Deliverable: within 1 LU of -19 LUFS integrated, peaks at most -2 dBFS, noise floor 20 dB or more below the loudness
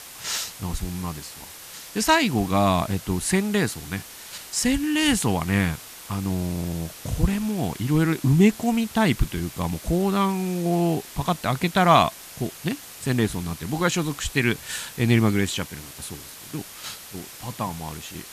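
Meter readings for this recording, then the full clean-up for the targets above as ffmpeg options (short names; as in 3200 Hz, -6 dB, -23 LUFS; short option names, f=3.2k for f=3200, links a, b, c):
noise floor -42 dBFS; noise floor target -44 dBFS; loudness -24.0 LUFS; peak -3.0 dBFS; loudness target -19.0 LUFS
-> -af "afftdn=nr=6:nf=-42"
-af "volume=5dB,alimiter=limit=-2dB:level=0:latency=1"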